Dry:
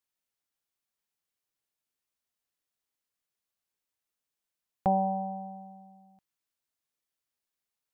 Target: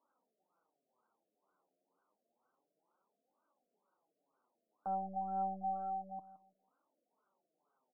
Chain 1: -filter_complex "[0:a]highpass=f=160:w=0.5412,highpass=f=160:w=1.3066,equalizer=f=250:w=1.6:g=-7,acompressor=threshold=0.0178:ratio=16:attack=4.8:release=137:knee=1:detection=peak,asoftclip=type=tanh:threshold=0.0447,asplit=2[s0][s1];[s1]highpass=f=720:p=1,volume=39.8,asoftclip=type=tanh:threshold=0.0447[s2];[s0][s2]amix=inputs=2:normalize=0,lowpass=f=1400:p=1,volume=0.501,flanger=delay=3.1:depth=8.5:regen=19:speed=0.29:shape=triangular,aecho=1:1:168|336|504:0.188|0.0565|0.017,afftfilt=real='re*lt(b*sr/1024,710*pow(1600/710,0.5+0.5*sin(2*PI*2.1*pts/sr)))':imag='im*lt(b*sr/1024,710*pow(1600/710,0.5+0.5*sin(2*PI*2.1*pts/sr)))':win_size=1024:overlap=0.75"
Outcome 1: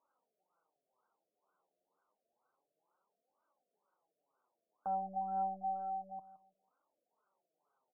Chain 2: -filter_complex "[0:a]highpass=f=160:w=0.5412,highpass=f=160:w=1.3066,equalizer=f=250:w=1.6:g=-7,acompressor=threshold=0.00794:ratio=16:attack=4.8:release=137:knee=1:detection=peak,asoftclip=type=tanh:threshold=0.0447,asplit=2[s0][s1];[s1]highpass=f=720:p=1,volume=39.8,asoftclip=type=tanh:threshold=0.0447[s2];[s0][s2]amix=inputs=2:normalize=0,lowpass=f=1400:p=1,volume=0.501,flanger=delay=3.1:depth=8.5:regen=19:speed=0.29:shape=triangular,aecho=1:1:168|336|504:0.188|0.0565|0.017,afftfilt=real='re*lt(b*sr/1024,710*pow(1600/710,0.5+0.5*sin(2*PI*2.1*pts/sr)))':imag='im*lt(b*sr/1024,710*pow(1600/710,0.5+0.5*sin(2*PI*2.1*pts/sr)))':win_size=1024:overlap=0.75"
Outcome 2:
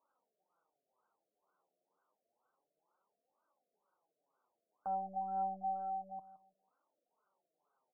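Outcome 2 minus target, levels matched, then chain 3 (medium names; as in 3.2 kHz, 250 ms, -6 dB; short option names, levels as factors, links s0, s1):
250 Hz band -5.0 dB
-filter_complex "[0:a]highpass=f=160:w=0.5412,highpass=f=160:w=1.3066,equalizer=f=250:w=1.6:g=2,acompressor=threshold=0.00794:ratio=16:attack=4.8:release=137:knee=1:detection=peak,asoftclip=type=tanh:threshold=0.0447,asplit=2[s0][s1];[s1]highpass=f=720:p=1,volume=39.8,asoftclip=type=tanh:threshold=0.0447[s2];[s0][s2]amix=inputs=2:normalize=0,lowpass=f=1400:p=1,volume=0.501,flanger=delay=3.1:depth=8.5:regen=19:speed=0.29:shape=triangular,aecho=1:1:168|336|504:0.188|0.0565|0.017,afftfilt=real='re*lt(b*sr/1024,710*pow(1600/710,0.5+0.5*sin(2*PI*2.1*pts/sr)))':imag='im*lt(b*sr/1024,710*pow(1600/710,0.5+0.5*sin(2*PI*2.1*pts/sr)))':win_size=1024:overlap=0.75"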